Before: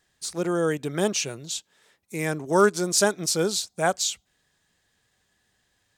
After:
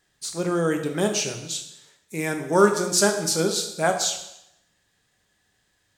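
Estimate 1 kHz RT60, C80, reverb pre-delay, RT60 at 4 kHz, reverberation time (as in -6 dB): 0.85 s, 10.5 dB, 5 ms, 0.75 s, 0.80 s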